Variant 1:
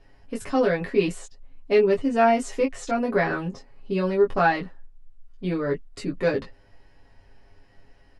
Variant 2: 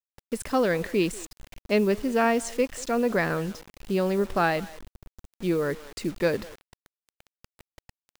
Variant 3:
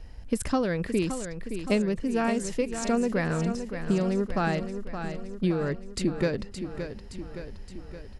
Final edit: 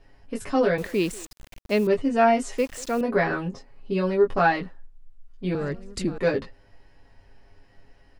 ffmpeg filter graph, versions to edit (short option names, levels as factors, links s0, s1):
-filter_complex "[1:a]asplit=2[s0][s1];[0:a]asplit=4[s2][s3][s4][s5];[s2]atrim=end=0.782[s6];[s0]atrim=start=0.778:end=1.872[s7];[s3]atrim=start=1.868:end=2.582[s8];[s1]atrim=start=2.578:end=3.012[s9];[s4]atrim=start=3.008:end=5.552[s10];[2:a]atrim=start=5.548:end=6.182[s11];[s5]atrim=start=6.178[s12];[s6][s7]acrossfade=d=0.004:c1=hsin:c2=hsin[s13];[s13][s8]acrossfade=d=0.004:c1=hsin:c2=hsin[s14];[s14][s9]acrossfade=d=0.004:c1=hsin:c2=hsin[s15];[s15][s10]acrossfade=d=0.004:c1=hsin:c2=hsin[s16];[s16][s11]acrossfade=d=0.004:c1=hsin:c2=hsin[s17];[s17][s12]acrossfade=d=0.004:c1=hsin:c2=hsin"